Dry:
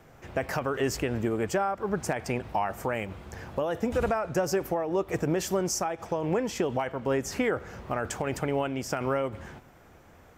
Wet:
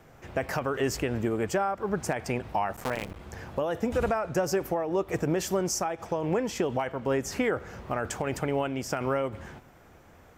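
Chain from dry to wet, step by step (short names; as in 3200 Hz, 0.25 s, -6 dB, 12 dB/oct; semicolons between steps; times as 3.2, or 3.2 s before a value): 2.73–3.21 cycle switcher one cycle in 3, muted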